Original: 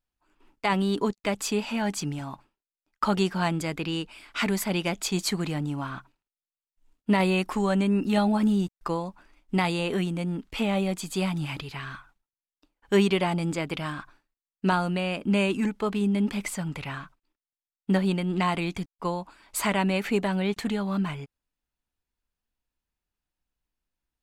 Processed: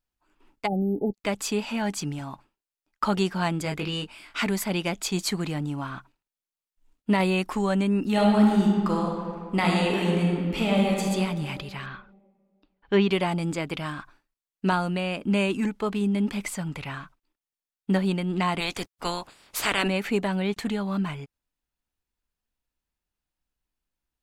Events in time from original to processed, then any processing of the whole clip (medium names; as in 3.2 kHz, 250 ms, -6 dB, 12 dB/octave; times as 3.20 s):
0.67–1.14 s: spectral selection erased 870–11000 Hz
3.63–4.40 s: doubling 20 ms -3.5 dB
8.12–11.03 s: reverb throw, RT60 2 s, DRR -1.5 dB
11.86–13.09 s: low-pass 4.3 kHz 24 dB/octave
18.59–19.87 s: spectral peaks clipped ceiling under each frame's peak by 21 dB